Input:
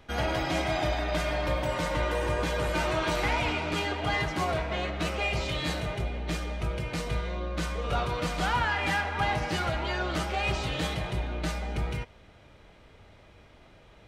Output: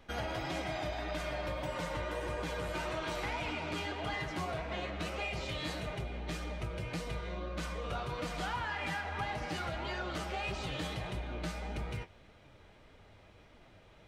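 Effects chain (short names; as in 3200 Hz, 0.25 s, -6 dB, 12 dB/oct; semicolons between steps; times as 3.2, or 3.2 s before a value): flange 1.7 Hz, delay 3.2 ms, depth 8.7 ms, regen +56%; compressor 3:1, threshold -35 dBFS, peak gain reduction 7 dB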